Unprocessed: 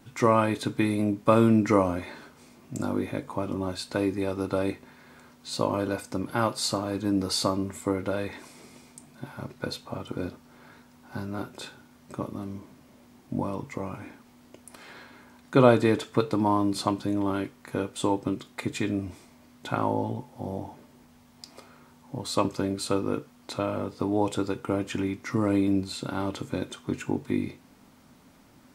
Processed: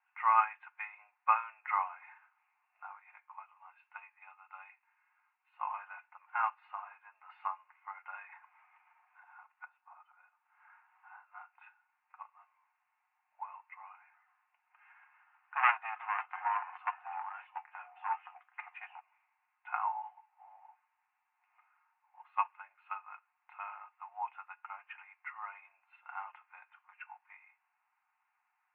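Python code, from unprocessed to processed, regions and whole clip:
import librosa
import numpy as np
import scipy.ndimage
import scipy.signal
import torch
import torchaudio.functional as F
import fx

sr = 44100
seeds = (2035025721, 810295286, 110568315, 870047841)

y = fx.chain(x, sr, fx.highpass(hz=1100.0, slope=6),
    fx.peak_eq(hz=1700.0, db=-4.0, octaves=0.36), at=(2.99, 5.54))
y = fx.chain(y, sr, fx.cheby_ripple(hz=5000.0, ripple_db=3),
    fx.dynamic_eq(hz=2200.0, q=1.0, threshold_db=-56.0, ratio=4.0, max_db=-4),
    fx.band_squash(depth_pct=70), at=(8.32, 11.3))
y = fx.chain(y, sr, fx.hum_notches(base_hz=50, count=9),
    fx.echo_pitch(ms=142, semitones=-3, count=2, db_per_echo=-6.0),
    fx.transformer_sat(knee_hz=1800.0), at=(13.99, 19.0))
y = scipy.signal.sosfilt(scipy.signal.cheby1(5, 1.0, [770.0, 2700.0], 'bandpass', fs=sr, output='sos'), y)
y = y + 0.42 * np.pad(y, (int(5.6 * sr / 1000.0), 0))[:len(y)]
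y = fx.upward_expand(y, sr, threshold_db=-54.0, expansion=1.5)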